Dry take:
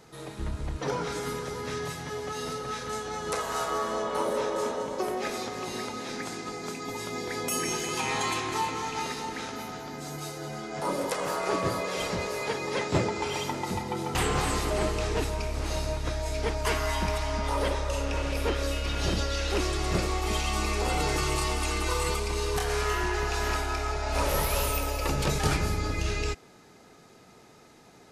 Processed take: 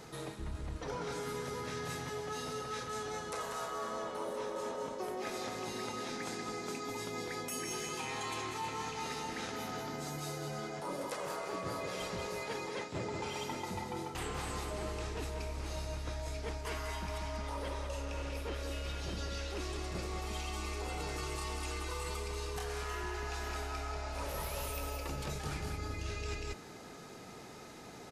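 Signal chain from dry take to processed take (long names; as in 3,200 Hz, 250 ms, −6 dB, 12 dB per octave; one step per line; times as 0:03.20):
single-tap delay 190 ms −9 dB
reversed playback
downward compressor 6 to 1, threshold −41 dBFS, peak gain reduction 19.5 dB
reversed playback
level +3.5 dB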